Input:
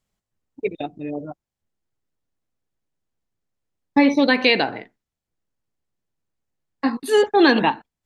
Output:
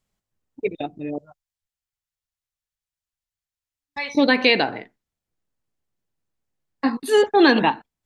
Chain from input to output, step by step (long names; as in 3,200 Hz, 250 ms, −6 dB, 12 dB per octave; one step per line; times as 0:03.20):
0:01.18–0:04.15: guitar amp tone stack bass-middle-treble 10-0-10